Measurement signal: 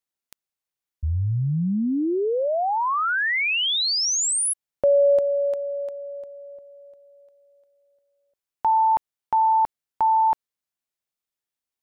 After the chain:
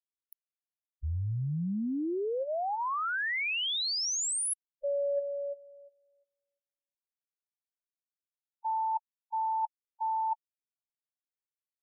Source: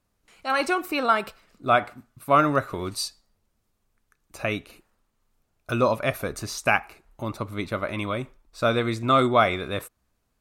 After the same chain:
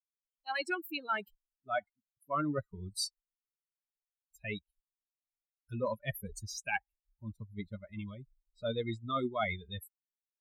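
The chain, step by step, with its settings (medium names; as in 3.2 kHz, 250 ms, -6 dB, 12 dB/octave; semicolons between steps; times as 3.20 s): expander on every frequency bin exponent 3; reverse; compression 5:1, threshold -31 dBFS; reverse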